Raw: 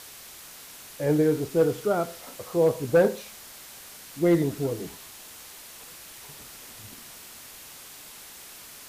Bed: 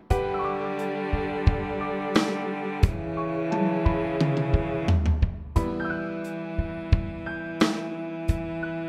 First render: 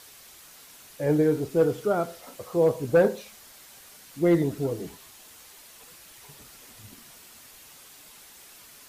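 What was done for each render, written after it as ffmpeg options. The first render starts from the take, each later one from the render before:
-af "afftdn=nr=6:nf=-46"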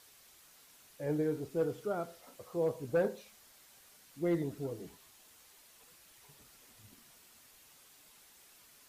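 -af "volume=0.282"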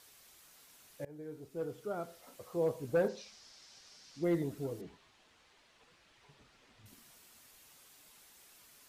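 -filter_complex "[0:a]asettb=1/sr,asplit=3[s0][s1][s2];[s0]atrim=end=3.084[s3];[s1]atrim=start=3.08:end=4.24,asetpts=PTS-STARTPTS,afade=t=in:d=0.004:c=qsin,afade=t=out:st=1.156:d=0.004:c=qsin,lowpass=f=5300:t=q:w=3.4[s4];[s2]atrim=start=4.236[s5];[s3][s4]acrossfade=d=0.004:c1=hsin:c2=qsin[s6];[s6][s5]acrossfade=d=0.004:c1=qsin:c2=hsin,asettb=1/sr,asplit=3[s7][s8][s9];[s7]atrim=end=4.814[s10];[s8]atrim=start=4.81:end=6.86,asetpts=PTS-STARTPTS,afade=t=in:d=0.004:c=qsin,afade=t=out:st=2.046:d=0.004:c=qsin,lowpass=3800[s11];[s9]atrim=start=6.856[s12];[s10][s11]acrossfade=d=0.004:c1=hsin:c2=qsin[s13];[s13][s12]acrossfade=d=0.004:c1=qsin:c2=hsin,asplit=2[s14][s15];[s14]atrim=end=1.05,asetpts=PTS-STARTPTS,afade=t=out:st=1.046:d=0.004:c=hsin:silence=0.0707946[s16];[s15]atrim=start=1.05,asetpts=PTS-STARTPTS,afade=t=in:d=1.31:silence=0.0707946[s17];[s16][s17]concat=n=2:v=0:a=1"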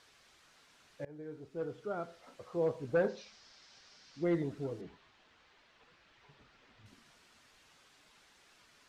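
-af "lowpass=5000,equalizer=f=1500:w=1.7:g=3"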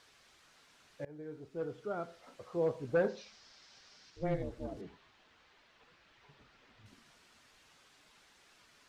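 -filter_complex "[0:a]asettb=1/sr,asplit=3[s0][s1][s2];[s0]atrim=end=4.104[s3];[s1]atrim=start=4.1:end=4.77,asetpts=PTS-STARTPTS,afade=t=in:d=0.004:c=qsin,afade=t=out:st=0.666:d=0.004:c=qsin,aeval=exprs='val(0)*sin(2*PI*180*n/s)':c=same[s4];[s2]atrim=start=4.766[s5];[s3][s4]acrossfade=d=0.004:c1=hsin:c2=qsin[s6];[s6][s5]acrossfade=d=0.004:c1=qsin:c2=hsin"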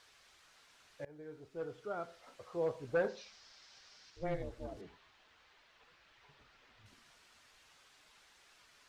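-af "equalizer=f=210:w=0.64:g=-7"

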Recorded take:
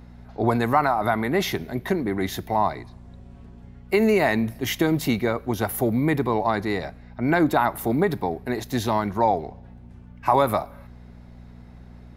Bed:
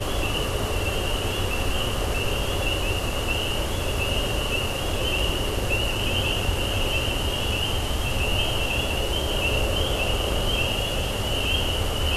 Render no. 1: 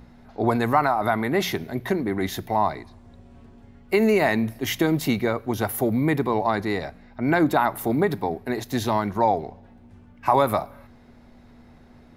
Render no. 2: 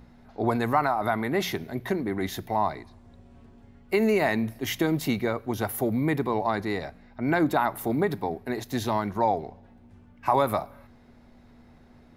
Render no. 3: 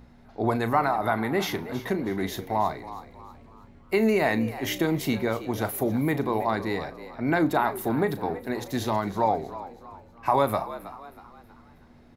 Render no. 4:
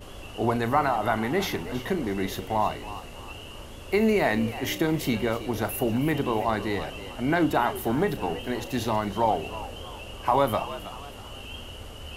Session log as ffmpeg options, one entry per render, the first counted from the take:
-af "bandreject=f=60:t=h:w=4,bandreject=f=120:t=h:w=4,bandreject=f=180:t=h:w=4"
-af "volume=0.668"
-filter_complex "[0:a]asplit=2[s0][s1];[s1]adelay=36,volume=0.224[s2];[s0][s2]amix=inputs=2:normalize=0,asplit=5[s3][s4][s5][s6][s7];[s4]adelay=320,afreqshift=78,volume=0.188[s8];[s5]adelay=640,afreqshift=156,volume=0.075[s9];[s6]adelay=960,afreqshift=234,volume=0.0302[s10];[s7]adelay=1280,afreqshift=312,volume=0.012[s11];[s3][s8][s9][s10][s11]amix=inputs=5:normalize=0"
-filter_complex "[1:a]volume=0.15[s0];[0:a][s0]amix=inputs=2:normalize=0"

